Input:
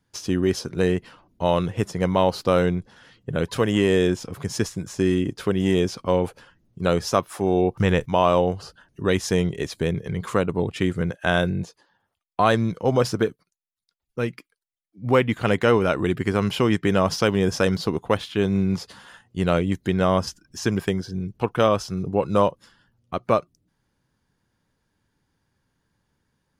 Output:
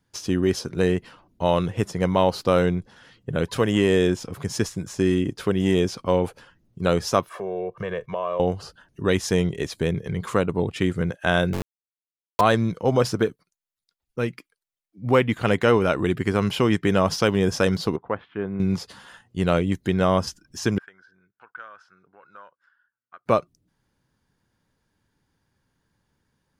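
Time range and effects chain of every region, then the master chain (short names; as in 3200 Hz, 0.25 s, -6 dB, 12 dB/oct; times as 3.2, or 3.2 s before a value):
7.29–8.4 three-band isolator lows -16 dB, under 190 Hz, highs -17 dB, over 2900 Hz + comb 1.8 ms, depth 87% + compressor 2.5:1, threshold -29 dBFS
11.53–12.41 comb 2 ms, depth 92% + sample gate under -22 dBFS
17.96–18.6 ladder low-pass 2100 Hz, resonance 25% + low shelf 95 Hz -9.5 dB
20.78–23.26 compressor 3:1, threshold -22 dBFS + band-pass 1500 Hz, Q 7.9
whole clip: dry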